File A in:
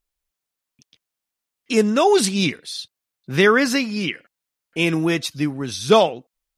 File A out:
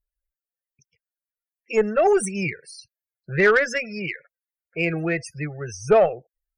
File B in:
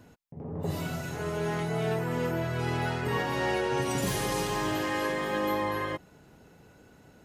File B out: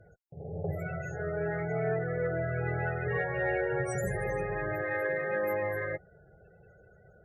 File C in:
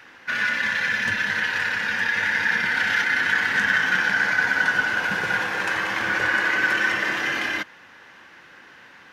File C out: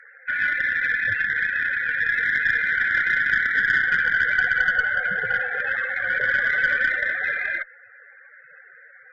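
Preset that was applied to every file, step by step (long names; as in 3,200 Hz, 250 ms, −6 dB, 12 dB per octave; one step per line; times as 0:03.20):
phaser with its sweep stopped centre 990 Hz, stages 6
spectral peaks only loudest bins 32
harmonic generator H 4 −25 dB, 5 −27 dB, 8 −45 dB, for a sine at −5.5 dBFS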